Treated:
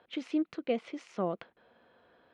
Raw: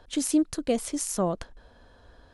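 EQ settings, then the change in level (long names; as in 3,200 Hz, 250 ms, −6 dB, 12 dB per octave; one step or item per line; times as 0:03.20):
loudspeaker in its box 270–2,000 Hz, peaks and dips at 280 Hz −9 dB, 420 Hz −5 dB, 600 Hz −6 dB, 900 Hz −3 dB, 1,700 Hz −9 dB
spectral tilt +3 dB per octave
parametric band 1,100 Hz −12.5 dB 1.8 octaves
+8.5 dB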